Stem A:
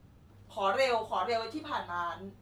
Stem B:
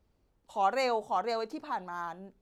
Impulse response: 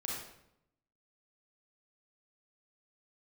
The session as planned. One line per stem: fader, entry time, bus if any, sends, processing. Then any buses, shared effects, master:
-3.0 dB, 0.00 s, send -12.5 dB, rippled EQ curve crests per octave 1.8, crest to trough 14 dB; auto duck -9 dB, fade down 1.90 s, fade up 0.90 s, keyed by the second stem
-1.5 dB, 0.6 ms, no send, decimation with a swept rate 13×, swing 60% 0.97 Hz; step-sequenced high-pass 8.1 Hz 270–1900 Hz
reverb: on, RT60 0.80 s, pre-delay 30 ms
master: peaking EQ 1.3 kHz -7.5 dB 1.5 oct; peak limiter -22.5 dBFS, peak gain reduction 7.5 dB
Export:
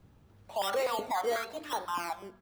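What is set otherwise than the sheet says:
stem A: missing rippled EQ curve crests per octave 1.8, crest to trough 14 dB; master: missing peaking EQ 1.3 kHz -7.5 dB 1.5 oct

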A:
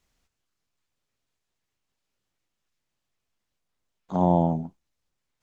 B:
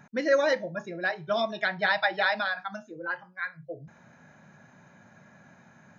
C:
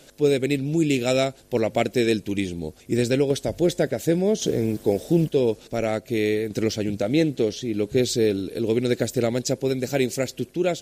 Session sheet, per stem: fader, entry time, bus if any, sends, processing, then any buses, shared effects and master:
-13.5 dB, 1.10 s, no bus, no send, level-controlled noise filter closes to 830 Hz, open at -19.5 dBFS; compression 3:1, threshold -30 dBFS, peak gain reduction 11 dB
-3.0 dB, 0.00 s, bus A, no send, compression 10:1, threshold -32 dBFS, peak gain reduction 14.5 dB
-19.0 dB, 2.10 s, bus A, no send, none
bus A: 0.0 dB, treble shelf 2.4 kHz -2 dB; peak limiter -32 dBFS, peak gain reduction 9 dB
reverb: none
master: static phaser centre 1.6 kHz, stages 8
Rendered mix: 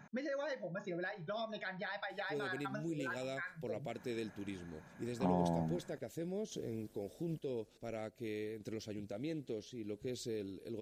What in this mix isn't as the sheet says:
stem A -13.5 dB -> -3.5 dB; master: missing static phaser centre 1.6 kHz, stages 8

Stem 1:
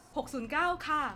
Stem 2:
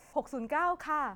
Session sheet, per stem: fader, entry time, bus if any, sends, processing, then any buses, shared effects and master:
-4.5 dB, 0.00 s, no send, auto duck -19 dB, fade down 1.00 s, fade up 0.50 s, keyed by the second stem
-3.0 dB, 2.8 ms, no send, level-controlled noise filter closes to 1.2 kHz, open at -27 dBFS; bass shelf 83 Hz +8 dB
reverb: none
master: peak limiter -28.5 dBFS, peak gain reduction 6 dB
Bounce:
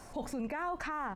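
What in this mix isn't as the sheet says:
stem 1 -4.5 dB -> +5.0 dB; stem 2 -3.0 dB -> +5.5 dB

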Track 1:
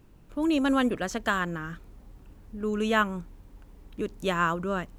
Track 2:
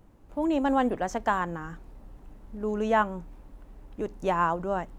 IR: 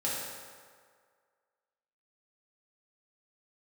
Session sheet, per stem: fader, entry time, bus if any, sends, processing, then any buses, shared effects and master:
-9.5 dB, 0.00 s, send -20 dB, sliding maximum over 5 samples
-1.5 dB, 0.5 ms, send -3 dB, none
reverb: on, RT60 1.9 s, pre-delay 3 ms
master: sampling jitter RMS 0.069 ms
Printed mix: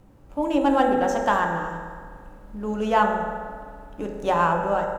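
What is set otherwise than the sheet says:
stem 2: polarity flipped; master: missing sampling jitter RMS 0.069 ms

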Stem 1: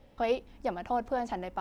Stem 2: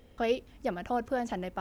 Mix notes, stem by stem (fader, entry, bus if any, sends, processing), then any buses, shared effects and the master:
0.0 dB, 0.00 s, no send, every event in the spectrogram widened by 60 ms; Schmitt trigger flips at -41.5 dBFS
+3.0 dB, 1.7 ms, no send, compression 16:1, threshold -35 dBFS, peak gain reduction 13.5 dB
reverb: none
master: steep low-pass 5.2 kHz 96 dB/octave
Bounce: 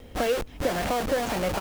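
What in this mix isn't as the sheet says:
stem 2 +3.0 dB -> +11.0 dB; master: missing steep low-pass 5.2 kHz 96 dB/octave

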